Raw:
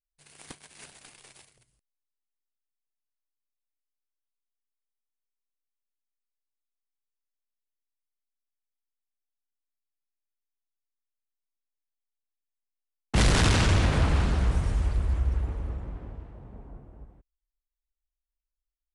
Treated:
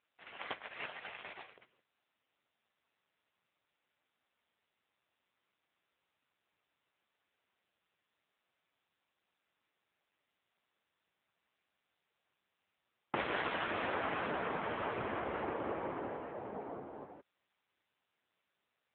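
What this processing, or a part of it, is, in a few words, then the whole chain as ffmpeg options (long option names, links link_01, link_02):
voicemail: -af "highpass=430,lowpass=2600,acompressor=threshold=-46dB:ratio=6,volume=14.5dB" -ar 8000 -c:a libopencore_amrnb -b:a 6700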